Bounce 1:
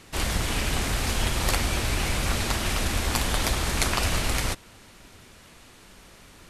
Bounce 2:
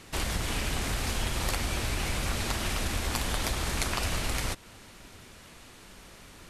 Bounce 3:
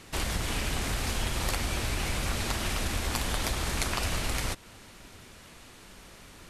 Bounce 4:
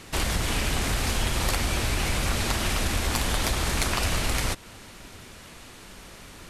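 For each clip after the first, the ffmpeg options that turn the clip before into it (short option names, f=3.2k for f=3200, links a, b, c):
-af "acompressor=threshold=-30dB:ratio=2"
-af anull
-af "asoftclip=type=tanh:threshold=-16dB,volume=5dB"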